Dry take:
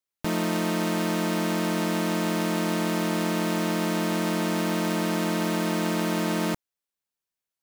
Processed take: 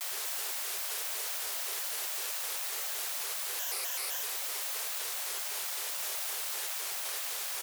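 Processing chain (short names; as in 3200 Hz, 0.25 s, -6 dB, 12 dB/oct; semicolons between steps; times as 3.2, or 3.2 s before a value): 4.99–6 CVSD 64 kbps; spectral gate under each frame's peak -30 dB weak; limiter -30 dBFS, peak gain reduction 7.5 dB; differentiator; doubler 42 ms -11 dB; reverb RT60 5.4 s, pre-delay 28 ms, DRR 2.5 dB; reverb removal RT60 1.7 s; requantised 6-bit, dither triangular; 3.57–4.24 ripple EQ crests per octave 0.85, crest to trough 9 dB; frequency shift +430 Hz; shaped vibrato square 3.9 Hz, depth 250 cents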